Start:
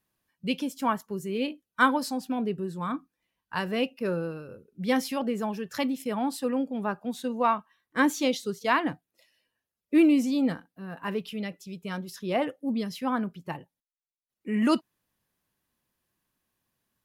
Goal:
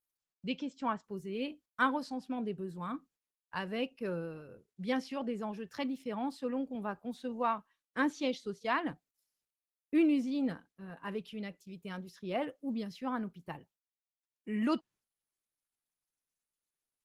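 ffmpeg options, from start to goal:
ffmpeg -i in.wav -filter_complex "[0:a]acrossover=split=6300[link_01][link_02];[link_01]agate=range=-33dB:threshold=-45dB:ratio=3:detection=peak[link_03];[link_02]acompressor=threshold=-59dB:ratio=16[link_04];[link_03][link_04]amix=inputs=2:normalize=0,asettb=1/sr,asplit=3[link_05][link_06][link_07];[link_05]atrim=end=6.754[link_08];[link_06]atrim=start=6.75:end=8.46,asetpts=PTS-STARTPTS,afade=type=in:duration=0.004:curve=qsin,afade=type=out:start_time=1.706:duration=0.004:curve=qsin,highpass=81[link_09];[link_07]atrim=start=8.456[link_10];[link_08][link_09]acrossfade=duration=0.004:curve1=hsin:curve2=qsin[link_11];[link_11][link_10]acrossfade=duration=0.004:curve1=qsin:curve2=hsin,volume=-7.5dB" -ar 48000 -c:a libopus -b:a 20k out.opus

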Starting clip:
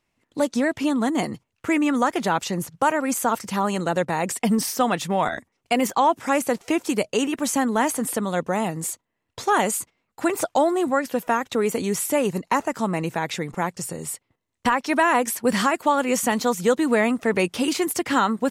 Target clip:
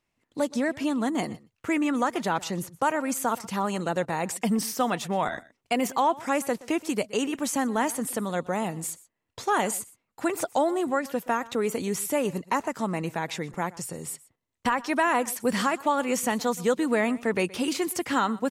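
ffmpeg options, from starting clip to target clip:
ffmpeg -i in.wav -af "aecho=1:1:123:0.0944,volume=-4.5dB" out.wav

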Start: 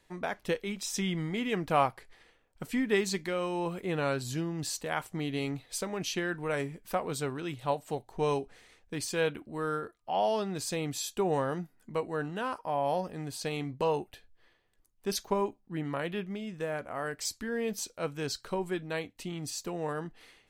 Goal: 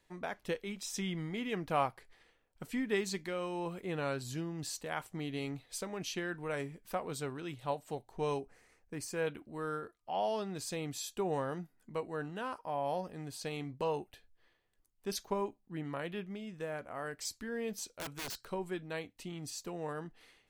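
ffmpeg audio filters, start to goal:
ffmpeg -i in.wav -filter_complex "[0:a]asettb=1/sr,asplit=3[link_01][link_02][link_03];[link_01]atrim=end=1.094[link_04];[link_02]atrim=start=1.09:end=1.73,asetpts=PTS-STARTPTS,afade=type=in:duration=0.004:curve=qsin,afade=type=out:start_time=0.636:duration=0.004:curve=qsin,bandreject=frequency=7700:width=10[link_05];[link_03]atrim=start=1.726[link_06];[link_04][link_05]acrossfade=duration=0.004:curve1=hsin:curve2=qsin[link_07];[link_07][link_06]acrossfade=duration=0.004:curve1=qsin:curve2=hsin,asettb=1/sr,asplit=3[link_08][link_09][link_10];[link_08]atrim=end=8.404[link_11];[link_09]atrim=start=8.4:end=9.27,asetpts=PTS-STARTPTS,afade=type=in:duration=0.004:curve=qsin,afade=type=out:start_time=0.866:duration=0.004:curve=qsin,equalizer=frequency=3500:width=2.4:gain=-13[link_12];[link_10]atrim=start=9.266[link_13];[link_11][link_12]acrossfade=duration=0.004:curve1=hsin:curve2=qsin[link_14];[link_14][link_13]acrossfade=duration=0.004:curve1=qsin:curve2=hsin,asettb=1/sr,asplit=3[link_15][link_16][link_17];[link_15]atrim=end=17.864[link_18];[link_16]atrim=start=17.86:end=18.49,asetpts=PTS-STARTPTS,afade=type=in:duration=0.004:curve=qsin,afade=type=out:start_time=0.626:duration=0.004:curve=qsin,aeval=exprs='(mod(29.9*val(0)+1,2)-1)/29.9':channel_layout=same[link_19];[link_17]atrim=start=18.486[link_20];[link_18][link_19]acrossfade=duration=0.004:curve1=hsin:curve2=qsin[link_21];[link_21][link_20]acrossfade=duration=0.004:curve1=qsin:curve2=hsin,volume=-5.5dB" out.wav

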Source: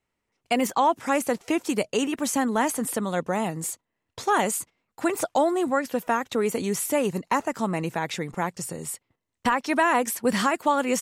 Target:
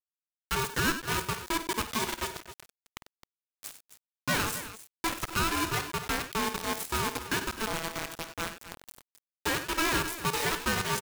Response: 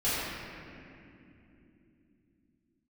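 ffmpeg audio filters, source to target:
-filter_complex "[0:a]asettb=1/sr,asplit=3[link_01][link_02][link_03];[link_01]atrim=end=2.274[link_04];[link_02]atrim=start=2.27:end=3.56,asetpts=PTS-STARTPTS,afade=type=in:duration=0.004:curve=qsin,afade=type=out:start_time=1.286:duration=0.004:curve=qsin,acrossover=split=200|7200[link_05][link_06][link_07];[link_05]acompressor=threshold=-37dB:ratio=4[link_08];[link_06]acompressor=threshold=-36dB:ratio=4[link_09];[link_07]acompressor=threshold=-43dB:ratio=4[link_10];[link_08][link_09][link_10]amix=inputs=3:normalize=0[link_11];[link_03]atrim=start=3.556[link_12];[link_04][link_11]acrossfade=duration=0.004:curve1=hsin:curve2=qsin[link_13];[link_13][link_12]acrossfade=duration=0.004:curve1=qsin:curve2=hsin,acrusher=bits=3:mix=0:aa=0.000001,asplit=2[link_14][link_15];[link_15]aecho=0:1:52|95|96|264:0.251|0.188|0.168|0.224[link_16];[link_14][link_16]amix=inputs=2:normalize=0,aeval=exprs='val(0)*sgn(sin(2*PI*660*n/s))':channel_layout=same,volume=-8dB"

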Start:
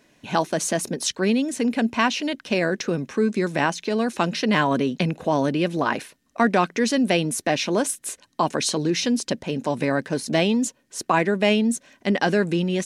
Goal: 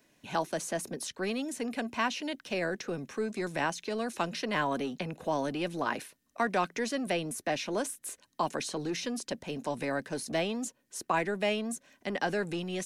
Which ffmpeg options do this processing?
ffmpeg -i in.wav -filter_complex "[0:a]highshelf=frequency=11000:gain=12,acrossover=split=340|680|2300[link_01][link_02][link_03][link_04];[link_01]asoftclip=type=tanh:threshold=-29dB[link_05];[link_04]alimiter=limit=-20.5dB:level=0:latency=1:release=197[link_06];[link_05][link_02][link_03][link_06]amix=inputs=4:normalize=0,volume=-8.5dB" out.wav

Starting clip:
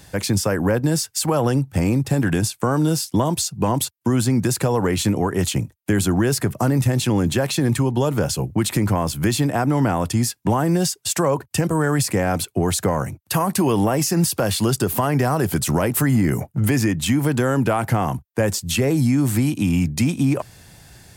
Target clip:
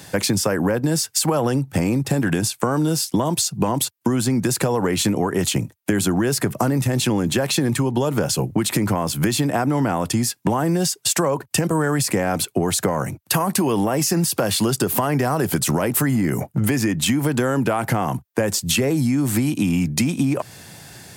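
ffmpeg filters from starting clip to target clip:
ffmpeg -i in.wav -af "highpass=130,acompressor=threshold=-23dB:ratio=6,volume=6.5dB" out.wav

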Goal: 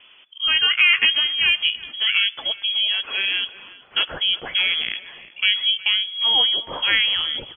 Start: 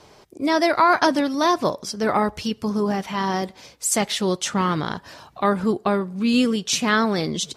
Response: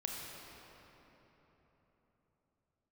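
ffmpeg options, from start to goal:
-filter_complex "[0:a]asplit=2[link_01][link_02];[1:a]atrim=start_sample=2205,afade=type=out:start_time=0.39:duration=0.01,atrim=end_sample=17640,asetrate=41013,aresample=44100[link_03];[link_02][link_03]afir=irnorm=-1:irlink=0,volume=-22dB[link_04];[link_01][link_04]amix=inputs=2:normalize=0,lowpass=frequency=3000:width_type=q:width=0.5098,lowpass=frequency=3000:width_type=q:width=0.6013,lowpass=frequency=3000:width_type=q:width=0.9,lowpass=frequency=3000:width_type=q:width=2.563,afreqshift=-3500,asplit=2[link_05][link_06];[link_06]adelay=365,lowpass=frequency=960:poles=1,volume=-12.5dB,asplit=2[link_07][link_08];[link_08]adelay=365,lowpass=frequency=960:poles=1,volume=0.42,asplit=2[link_09][link_10];[link_10]adelay=365,lowpass=frequency=960:poles=1,volume=0.42,asplit=2[link_11][link_12];[link_12]adelay=365,lowpass=frequency=960:poles=1,volume=0.42[link_13];[link_05][link_07][link_09][link_11][link_13]amix=inputs=5:normalize=0"

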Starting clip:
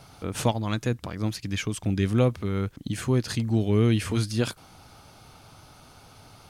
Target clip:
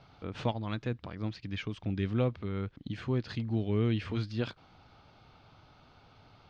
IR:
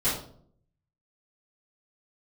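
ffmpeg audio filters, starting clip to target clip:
-af "lowpass=frequency=4200:width=0.5412,lowpass=frequency=4200:width=1.3066,volume=-7.5dB"

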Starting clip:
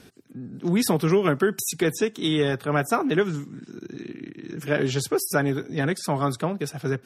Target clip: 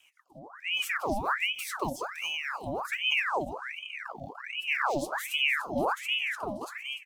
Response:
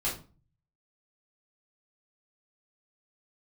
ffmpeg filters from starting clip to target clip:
-filter_complex "[0:a]flanger=delay=5.9:depth=5.5:regen=-60:speed=0.68:shape=sinusoidal,acrossover=split=240|1800[link_01][link_02][link_03];[link_01]dynaudnorm=framelen=210:gausssize=11:maxgain=13dB[link_04];[link_02]alimiter=level_in=1dB:limit=-24dB:level=0:latency=1,volume=-1dB[link_05];[link_03]acrusher=bits=3:mode=log:mix=0:aa=0.000001[link_06];[link_04][link_05][link_06]amix=inputs=3:normalize=0,asuperstop=centerf=1500:order=8:qfactor=0.54,aecho=1:1:294|588|882|1176|1470:0.251|0.121|0.0579|0.0278|0.0133,asettb=1/sr,asplit=3[link_07][link_08][link_09];[link_07]atrim=end=1.944[link_10];[link_08]atrim=start=1.94:end=2.85,asetpts=PTS-STARTPTS,afade=type=in:duration=0.004:curve=qsin,afade=type=out:start_time=0.906:duration=0.004:curve=qsin,acompressor=threshold=-24dB:ratio=6[link_11];[link_09]atrim=start=2.846[link_12];[link_10][link_11]acrossfade=duration=0.004:curve1=hsin:curve2=qsin[link_13];[link_13][link_12]acrossfade=duration=0.004:curve1=qsin:curve2=hsin,aeval=exprs='val(0)*sin(2*PI*1600*n/s+1600*0.75/1.3*sin(2*PI*1.3*n/s))':channel_layout=same,volume=-4.5dB"

